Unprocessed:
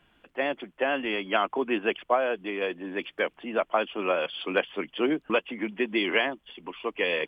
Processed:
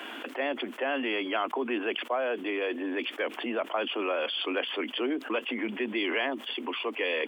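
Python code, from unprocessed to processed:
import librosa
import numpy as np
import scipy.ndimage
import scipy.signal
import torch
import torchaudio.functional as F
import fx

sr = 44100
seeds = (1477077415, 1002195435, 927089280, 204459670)

y = scipy.signal.sosfilt(scipy.signal.butter(12, 230.0, 'highpass', fs=sr, output='sos'), x)
y = fx.env_flatten(y, sr, amount_pct=70)
y = y * librosa.db_to_amplitude(-7.5)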